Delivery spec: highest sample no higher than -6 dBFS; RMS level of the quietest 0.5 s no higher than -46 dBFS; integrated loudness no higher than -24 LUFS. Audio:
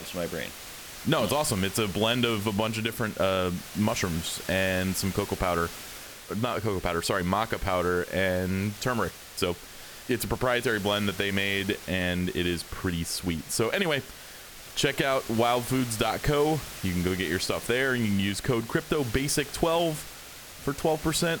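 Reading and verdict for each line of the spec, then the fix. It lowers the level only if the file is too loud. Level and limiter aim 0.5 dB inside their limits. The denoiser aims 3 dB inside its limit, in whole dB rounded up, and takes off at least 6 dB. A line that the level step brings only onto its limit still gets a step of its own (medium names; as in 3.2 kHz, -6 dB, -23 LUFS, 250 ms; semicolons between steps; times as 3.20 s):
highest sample -10.0 dBFS: pass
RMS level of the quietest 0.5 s -45 dBFS: fail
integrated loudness -27.5 LUFS: pass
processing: noise reduction 6 dB, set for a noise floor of -45 dBFS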